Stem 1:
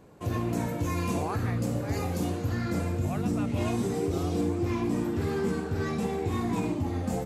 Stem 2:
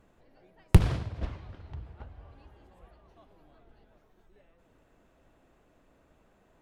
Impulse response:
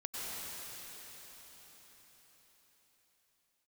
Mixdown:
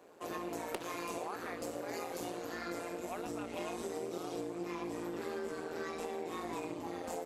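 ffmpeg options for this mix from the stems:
-filter_complex "[0:a]volume=1dB[link_01];[1:a]volume=1dB[link_02];[link_01][link_02]amix=inputs=2:normalize=0,highpass=frequency=340:width=0.5412,highpass=frequency=340:width=1.3066,tremolo=f=170:d=0.71,acompressor=threshold=-36dB:ratio=6"

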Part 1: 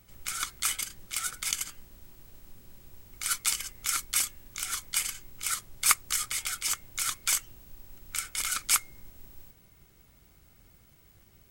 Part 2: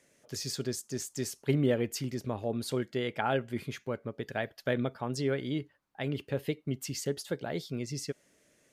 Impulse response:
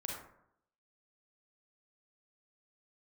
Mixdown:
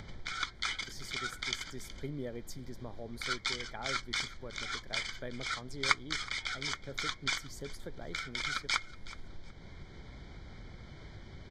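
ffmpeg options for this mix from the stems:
-filter_complex "[0:a]lowpass=frequency=4500:width=0.5412,lowpass=frequency=4500:width=1.3066,bandreject=frequency=1200:width=9,volume=1dB,asplit=2[link_01][link_02];[link_02]volume=-20dB[link_03];[1:a]adelay=550,volume=-13.5dB[link_04];[link_03]aecho=0:1:371|742|1113:1|0.17|0.0289[link_05];[link_01][link_04][link_05]amix=inputs=3:normalize=0,acompressor=mode=upward:threshold=-36dB:ratio=2.5,asuperstop=centerf=2700:order=12:qfactor=4.5"

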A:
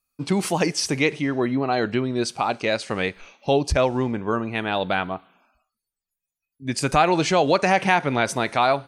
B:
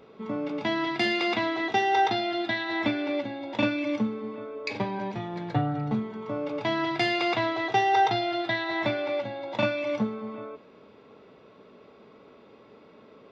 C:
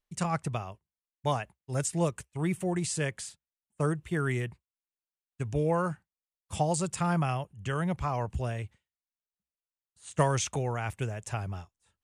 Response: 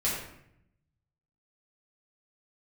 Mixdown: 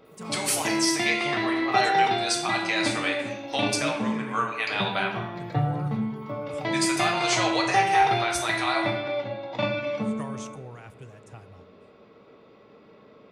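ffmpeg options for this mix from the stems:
-filter_complex "[0:a]highpass=990,highshelf=frequency=5600:gain=8.5,alimiter=limit=-16dB:level=0:latency=1:release=459,adelay=50,volume=-3.5dB,asplit=2[link_01][link_02];[link_02]volume=-4dB[link_03];[1:a]volume=-4.5dB,asplit=2[link_04][link_05];[link_05]volume=-8dB[link_06];[2:a]acrossover=split=920[link_07][link_08];[link_07]aeval=exprs='val(0)*(1-0.5/2+0.5/2*cos(2*PI*3.1*n/s))':channel_layout=same[link_09];[link_08]aeval=exprs='val(0)*(1-0.5/2-0.5/2*cos(2*PI*3.1*n/s))':channel_layout=same[link_10];[link_09][link_10]amix=inputs=2:normalize=0,volume=-11dB,asplit=2[link_11][link_12];[link_12]volume=-21dB[link_13];[3:a]atrim=start_sample=2205[link_14];[link_03][link_06][link_13]amix=inputs=3:normalize=0[link_15];[link_15][link_14]afir=irnorm=-1:irlink=0[link_16];[link_01][link_04][link_11][link_16]amix=inputs=4:normalize=0"

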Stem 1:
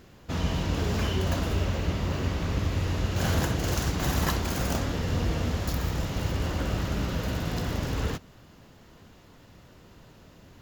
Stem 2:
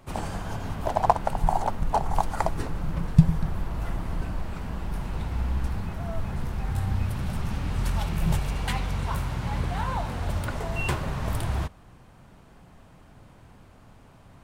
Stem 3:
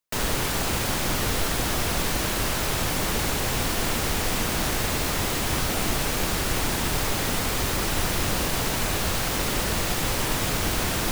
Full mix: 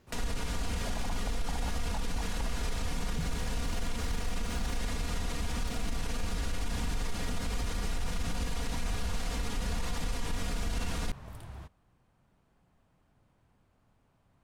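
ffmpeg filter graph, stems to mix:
ffmpeg -i stem1.wav -i stem2.wav -i stem3.wav -filter_complex "[0:a]acompressor=threshold=-35dB:ratio=3,volume=-12dB[link_01];[1:a]volume=-17.5dB[link_02];[2:a]lowpass=9100,aecho=1:1:4.2:0.93,acrossover=split=140[link_03][link_04];[link_04]acompressor=threshold=-35dB:ratio=6[link_05];[link_03][link_05]amix=inputs=2:normalize=0,volume=-2dB[link_06];[link_01][link_02][link_06]amix=inputs=3:normalize=0,alimiter=limit=-24dB:level=0:latency=1:release=28" out.wav

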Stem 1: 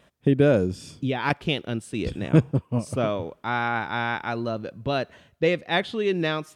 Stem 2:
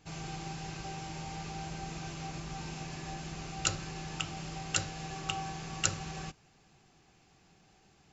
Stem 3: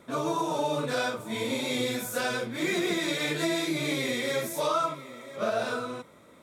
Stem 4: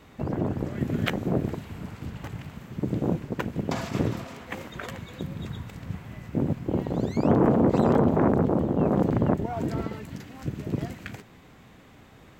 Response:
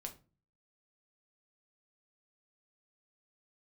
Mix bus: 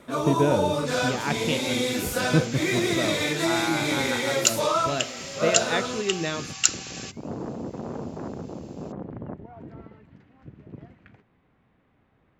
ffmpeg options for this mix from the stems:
-filter_complex "[0:a]bandreject=frequency=58.77:width_type=h:width=4,bandreject=frequency=117.54:width_type=h:width=4,bandreject=frequency=176.31:width_type=h:width=4,bandreject=frequency=235.08:width_type=h:width=4,bandreject=frequency=293.85:width_type=h:width=4,bandreject=frequency=352.62:width_type=h:width=4,bandreject=frequency=411.39:width_type=h:width=4,bandreject=frequency=470.16:width_type=h:width=4,bandreject=frequency=528.93:width_type=h:width=4,bandreject=frequency=587.7:width_type=h:width=4,bandreject=frequency=646.47:width_type=h:width=4,bandreject=frequency=705.24:width_type=h:width=4,bandreject=frequency=764.01:width_type=h:width=4,bandreject=frequency=822.78:width_type=h:width=4,bandreject=frequency=881.55:width_type=h:width=4,bandreject=frequency=940.32:width_type=h:width=4,bandreject=frequency=999.09:width_type=h:width=4,bandreject=frequency=1057.86:width_type=h:width=4,bandreject=frequency=1116.63:width_type=h:width=4,bandreject=frequency=1175.4:width_type=h:width=4,bandreject=frequency=1234.17:width_type=h:width=4,bandreject=frequency=1292.94:width_type=h:width=4,bandreject=frequency=1351.71:width_type=h:width=4,bandreject=frequency=1410.48:width_type=h:width=4,bandreject=frequency=1469.25:width_type=h:width=4,bandreject=frequency=1528.02:width_type=h:width=4,bandreject=frequency=1586.79:width_type=h:width=4,bandreject=frequency=1645.56:width_type=h:width=4,bandreject=frequency=1704.33:width_type=h:width=4,volume=-3.5dB[link_01];[1:a]highpass=1100,highshelf=frequency=2300:gain=11,volume=3.5dB,asoftclip=hard,volume=-3.5dB,adelay=800,volume=1.5dB[link_02];[2:a]volume=3dB[link_03];[3:a]lowpass=2400,volume=-13.5dB[link_04];[link_01][link_02][link_03][link_04]amix=inputs=4:normalize=0"

